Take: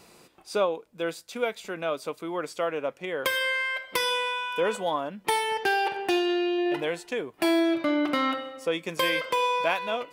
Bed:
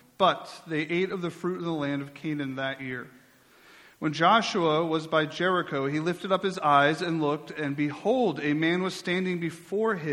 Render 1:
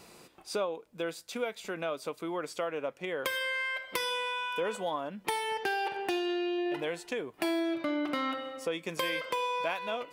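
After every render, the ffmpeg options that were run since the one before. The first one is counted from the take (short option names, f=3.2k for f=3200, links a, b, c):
-af "acompressor=threshold=-34dB:ratio=2"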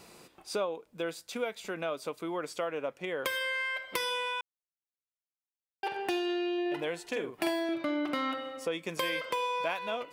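-filter_complex "[0:a]asettb=1/sr,asplit=3[a][b][c];[a]atrim=end=7.024[d];[b]atrim=start=7.02:end=7.69,asetpts=PTS-STARTPTS,afade=t=in:d=0.004:c=qsin,afade=t=out:st=0.666:d=0.004:c=qsin,asplit=2[e][f];[f]adelay=47,volume=-5dB[g];[e][g]amix=inputs=2:normalize=0,atrim=end_sample=29547[h];[c]atrim=start=7.686[i];[d][h]acrossfade=d=0.004:c1=hsin:c2=qsin[j];[j][i]acrossfade=d=0.004:c1=qsin:c2=hsin,asplit=3[k][l][m];[k]atrim=end=4.41,asetpts=PTS-STARTPTS,afade=t=out:st=4.406:d=0.004:c=hsin[n];[l]atrim=start=4.41:end=5.83,asetpts=PTS-STARTPTS,volume=0[o];[m]atrim=start=5.83,asetpts=PTS-STARTPTS,afade=t=in:d=0.004:c=hsin[p];[n][o][p]concat=n=3:v=0:a=1"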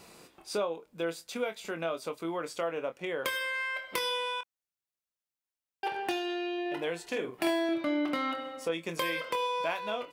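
-filter_complex "[0:a]asplit=2[a][b];[b]adelay=24,volume=-9dB[c];[a][c]amix=inputs=2:normalize=0"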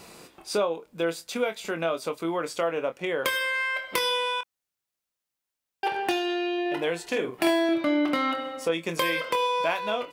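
-af "volume=6dB"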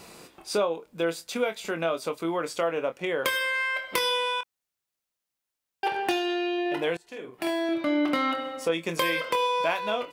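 -filter_complex "[0:a]asplit=2[a][b];[a]atrim=end=6.97,asetpts=PTS-STARTPTS,afade=t=out:st=6.966:d=0.004:c=hsin:silence=0.0794328[c];[b]atrim=start=6.97,asetpts=PTS-STARTPTS,afade=t=in:d=1.11:silence=0.0794328[d];[c][d]concat=n=2:v=0:a=1"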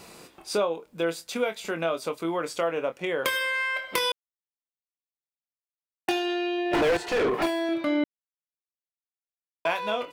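-filter_complex "[0:a]asettb=1/sr,asplit=3[a][b][c];[a]atrim=end=6.734[d];[b]atrim=start=6.73:end=7.46,asetpts=PTS-STARTPTS,afade=t=in:d=0.004:c=qsin,afade=t=out:st=0.726:d=0.004:c=qsin,asplit=2[e][f];[f]highpass=f=720:p=1,volume=40dB,asoftclip=type=tanh:threshold=-14.5dB[g];[e][g]amix=inputs=2:normalize=0,lowpass=f=1.2k:p=1,volume=-6dB[h];[c]atrim=start=7.456[i];[d][h]acrossfade=d=0.004:c1=hsin:c2=qsin[j];[j][i]acrossfade=d=0.004:c1=qsin:c2=hsin,asplit=5[k][l][m][n][o];[k]atrim=end=4.12,asetpts=PTS-STARTPTS,afade=t=out:st=4.116:d=0.004:c=hsin[p];[l]atrim=start=4.12:end=6.08,asetpts=PTS-STARTPTS,volume=0[q];[m]atrim=start=6.08:end=8.04,asetpts=PTS-STARTPTS,afade=t=in:d=0.004:c=hsin,afade=t=out:st=1.956:d=0.004:c=hsin[r];[n]atrim=start=8.04:end=9.65,asetpts=PTS-STARTPTS,volume=0[s];[o]atrim=start=9.65,asetpts=PTS-STARTPTS,afade=t=in:d=0.004:c=hsin[t];[p][q][r][s][t]concat=n=5:v=0:a=1"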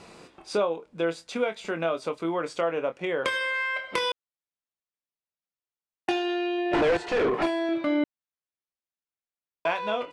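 -af "lowpass=f=9.8k:w=0.5412,lowpass=f=9.8k:w=1.3066,aemphasis=mode=reproduction:type=cd"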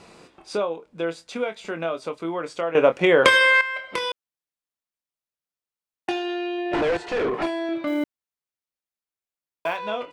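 -filter_complex "[0:a]asettb=1/sr,asplit=3[a][b][c];[a]atrim=end=7.874[d];[b]atrim=start=7.87:end=9.77,asetpts=PTS-STARTPTS,afade=t=in:d=0.004:c=qsin,afade=t=out:st=1.896:d=0.004:c=qsin,acrusher=bits=8:mode=log:mix=0:aa=0.000001[e];[c]atrim=start=9.766[f];[d][e]acrossfade=d=0.004:c1=hsin:c2=qsin[g];[g][f]acrossfade=d=0.004:c1=qsin:c2=hsin,asplit=3[h][i][j];[h]atrim=end=2.752[k];[i]atrim=start=2.748:end=3.612,asetpts=PTS-STARTPTS,volume=12dB[l];[j]atrim=start=3.608[m];[k][l]acrossfade=d=0.004:c1=hsin:c2=hsin[n];[n][m]acrossfade=d=0.004:c1=hsin:c2=hsin"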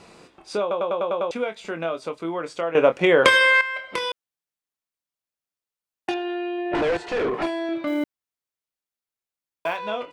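-filter_complex "[0:a]asettb=1/sr,asplit=3[a][b][c];[a]atrim=end=6.144[d];[b]atrim=start=6.14:end=6.75,asetpts=PTS-STARTPTS,afade=t=in:d=0.004:c=qsin,afade=t=out:st=0.606:d=0.004:c=qsin,lowpass=2.5k[e];[c]atrim=start=6.746[f];[d][e]acrossfade=d=0.004:c1=hsin:c2=qsin[g];[g][f]acrossfade=d=0.004:c1=qsin:c2=hsin,asplit=8[h][i][j][k][l][m][n][o];[h]atrim=end=0.712[p];[i]atrim=start=0.608:end=0.712[q];[j]atrim=start=0.608:end=0.712[r];[k]atrim=start=0.608:end=0.712[s];[l]atrim=start=0.608:end=0.712[t];[m]atrim=start=0.608:end=0.712[u];[n]atrim=start=0.608:end=0.712[v];[o]atrim=start=1.308[w];[p][q]acrossfade=d=0.004:c1=hsin:c2=hsin[x];[x][r]acrossfade=d=0.004:c1=hsin:c2=hsin[y];[y][s]acrossfade=d=0.004:c1=hsin:c2=hsin[z];[z][t]acrossfade=d=0.004:c1=hsin:c2=hsin[aa];[aa][u]acrossfade=d=0.004:c1=hsin:c2=hsin[ab];[ab][v]acrossfade=d=0.004:c1=hsin:c2=hsin[ac];[ac][w]acrossfade=d=0.004:c1=hsin:c2=hsin"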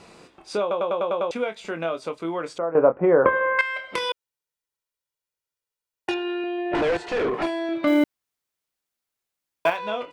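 -filter_complex "[0:a]asettb=1/sr,asplit=3[a][b][c];[a]atrim=end=2.584[d];[b]atrim=start=2.58:end=3.59,asetpts=PTS-STARTPTS,afade=t=in:d=0.004:c=qsin,afade=t=out:st=1.006:d=0.004:c=qsin,lowpass=f=1.3k:w=0.5412,lowpass=f=1.3k:w=1.3066[e];[c]atrim=start=3.586[f];[d][e]acrossfade=d=0.004:c1=hsin:c2=qsin[g];[g][f]acrossfade=d=0.004:c1=qsin:c2=hsin,asettb=1/sr,asplit=3[h][i][j];[h]atrim=end=4.094[k];[i]atrim=start=4.09:end=6.44,asetpts=PTS-STARTPTS,afade=t=in:d=0.004:c=qsin,afade=t=out:st=2.346:d=0.004:c=qsin,aecho=1:1:2.1:0.55,atrim=end_sample=103635[l];[j]atrim=start=6.436[m];[k][l]acrossfade=d=0.004:c1=hsin:c2=qsin[n];[n][m]acrossfade=d=0.004:c1=qsin:c2=hsin,asettb=1/sr,asplit=3[o][p][q];[o]atrim=end=7.834[r];[p]atrim=start=7.83:end=9.7,asetpts=PTS-STARTPTS,afade=t=in:d=0.004:c=qsin,afade=t=out:st=1.866:d=0.004:c=qsin,acontrast=57[s];[q]atrim=start=9.696[t];[r][s]acrossfade=d=0.004:c1=hsin:c2=qsin[u];[u][t]acrossfade=d=0.004:c1=qsin:c2=hsin"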